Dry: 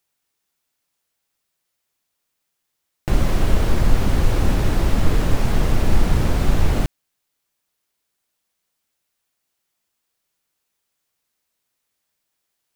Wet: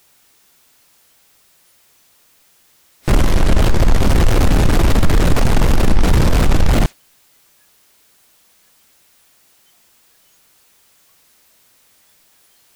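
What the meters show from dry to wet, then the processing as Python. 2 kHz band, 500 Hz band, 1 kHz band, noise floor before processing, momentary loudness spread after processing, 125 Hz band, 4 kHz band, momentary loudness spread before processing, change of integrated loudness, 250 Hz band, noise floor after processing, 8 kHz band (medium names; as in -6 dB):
+6.5 dB, +6.0 dB, +6.5 dB, -77 dBFS, 3 LU, +5.0 dB, +7.0 dB, 3 LU, +5.5 dB, +6.0 dB, -55 dBFS, +7.5 dB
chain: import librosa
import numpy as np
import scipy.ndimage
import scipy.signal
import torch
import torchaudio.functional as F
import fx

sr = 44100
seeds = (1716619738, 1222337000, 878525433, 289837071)

y = fx.power_curve(x, sr, exponent=0.5)
y = fx.noise_reduce_blind(y, sr, reduce_db=14)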